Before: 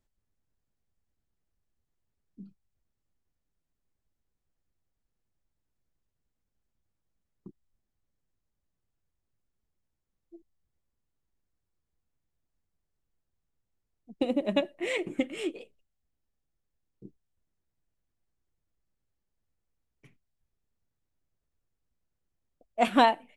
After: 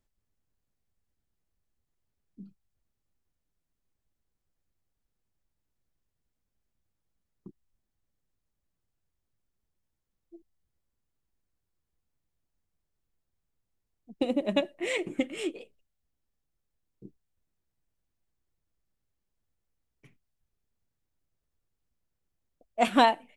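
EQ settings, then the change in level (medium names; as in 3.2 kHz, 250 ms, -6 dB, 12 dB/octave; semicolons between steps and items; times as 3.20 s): dynamic bell 7 kHz, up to +4 dB, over -48 dBFS, Q 0.77; 0.0 dB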